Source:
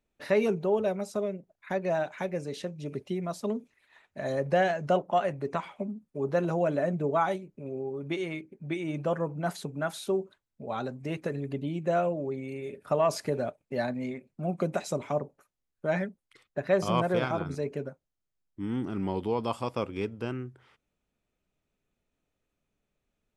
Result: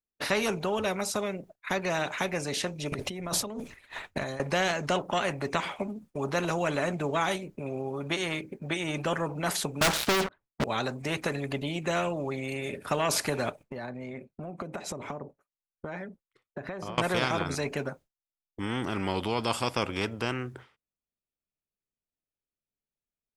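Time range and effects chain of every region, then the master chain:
2.92–4.4 low shelf 100 Hz +12 dB + negative-ratio compressor -39 dBFS
9.81–10.64 LPF 1800 Hz + sample leveller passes 5
13.63–16.98 high shelf 2200 Hz -10.5 dB + compressor, threshold -43 dBFS
whole clip: expander -48 dBFS; spectral compressor 2:1; gain +2 dB

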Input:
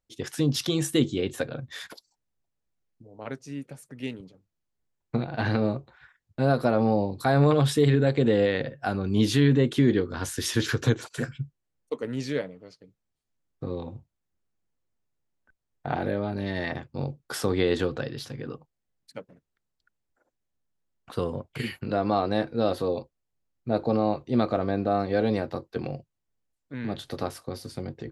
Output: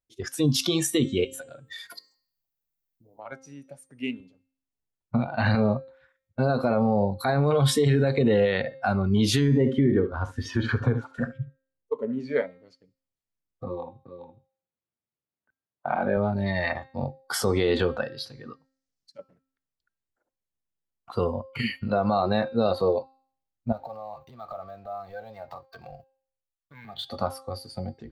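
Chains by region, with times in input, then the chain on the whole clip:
1.24–3.32 high shelf 3200 Hz +7.5 dB + notches 50/100/150/200/250/300/350/400/450 Hz + compressor 10:1, threshold -37 dBFS
9.41–12.36 LPF 1300 Hz 6 dB/oct + echo 71 ms -11.5 dB
13.64–16.17 BPF 110–3800 Hz + echo 0.414 s -6 dB
18.53–19.19 bell 5500 Hz +14.5 dB 1.1 oct + compressor 3:1, threshold -51 dBFS
23.72–27.05 compressor 8:1, threshold -38 dBFS + bell 310 Hz -14.5 dB 1.1 oct + sample leveller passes 2
whole clip: spectral noise reduction 14 dB; de-hum 265.8 Hz, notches 33; limiter -18.5 dBFS; gain +5.5 dB

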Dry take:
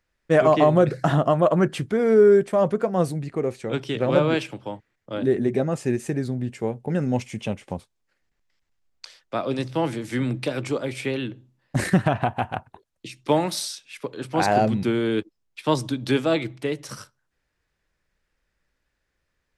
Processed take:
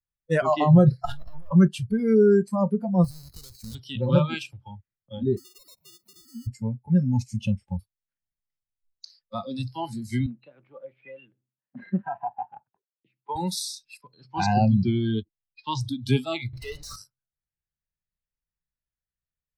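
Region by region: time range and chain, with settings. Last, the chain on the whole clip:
1.05–1.51 half-wave gain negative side -12 dB + negative-ratio compressor -26 dBFS + low shelf 470 Hz -4.5 dB
3.04–3.75 half-waves squared off + compressor 16:1, threshold -28 dBFS
5.37–6.47 sine-wave speech + compressor 8:1, threshold -34 dBFS + sample-rate reducer 1600 Hz
10.26–13.36 BPF 310–3200 Hz + air absorption 390 m
14.01–15.81 steep low-pass 6700 Hz + mismatched tape noise reduction decoder only
16.53–16.96 compressor 2:1, threshold -29 dBFS + overdrive pedal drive 36 dB, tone 1500 Hz, clips at -19.5 dBFS
whole clip: spectral noise reduction 24 dB; resonant low shelf 220 Hz +9 dB, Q 1.5; gain -2 dB

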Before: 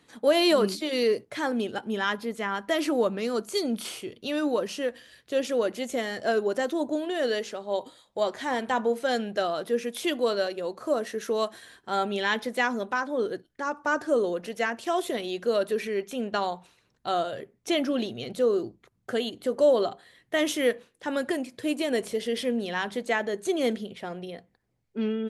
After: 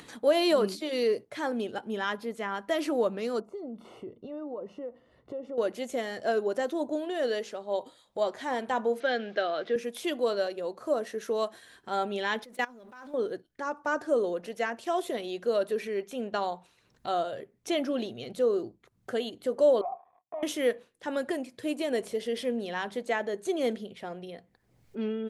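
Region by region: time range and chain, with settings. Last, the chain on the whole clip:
3.4–5.58 compressor, threshold -31 dBFS + polynomial smoothing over 65 samples
9–9.76 level-crossing sampler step -49.5 dBFS + speaker cabinet 160–4900 Hz, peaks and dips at 180 Hz -6 dB, 940 Hz -7 dB, 1600 Hz +6 dB, 2200 Hz +5 dB, 3400 Hz +4 dB + three-band squash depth 40%
12.44–13.14 G.711 law mismatch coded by mu + level quantiser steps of 23 dB
19.81–20.43 sample leveller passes 5 + vocal tract filter a + compressor 4:1, threshold -29 dBFS
whole clip: dynamic EQ 600 Hz, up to +4 dB, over -38 dBFS, Q 0.79; upward compressor, threshold -32 dBFS; gain -5.5 dB

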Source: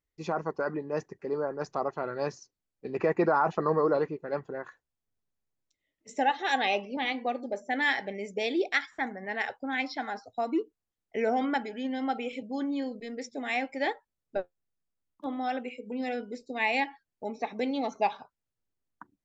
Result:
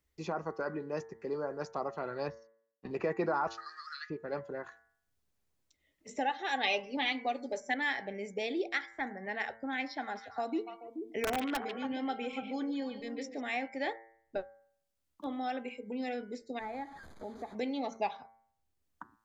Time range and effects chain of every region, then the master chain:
2.28–2.91 G.711 law mismatch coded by A + air absorption 200 m + comb 1.1 ms, depth 74%
3.47–4.1 rippled Chebyshev high-pass 1200 Hz, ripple 9 dB + bell 5200 Hz +14 dB 2.3 oct
6.63–7.74 bell 5500 Hz +10.5 dB 2.6 oct + comb 7 ms, depth 49%
10.01–13.41 wrapped overs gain 18.5 dB + delay with a stepping band-pass 0.143 s, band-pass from 2900 Hz, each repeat -1.4 oct, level -3 dB
16.59–17.55 delta modulation 64 kbps, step -38.5 dBFS + running mean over 16 samples + compressor 1.5:1, threshold -45 dBFS
whole clip: bell 71 Hz +12.5 dB 0.34 oct; de-hum 113 Hz, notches 20; three-band squash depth 40%; gain -5 dB

